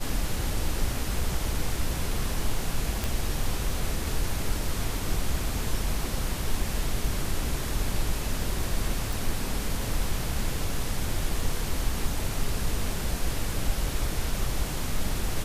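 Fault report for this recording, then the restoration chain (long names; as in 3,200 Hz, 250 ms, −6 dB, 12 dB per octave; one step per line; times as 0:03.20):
0:03.04: click
0:09.13: click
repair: click removal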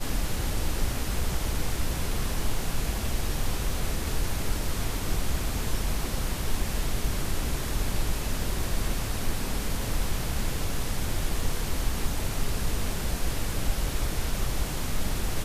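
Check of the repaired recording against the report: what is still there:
none of them is left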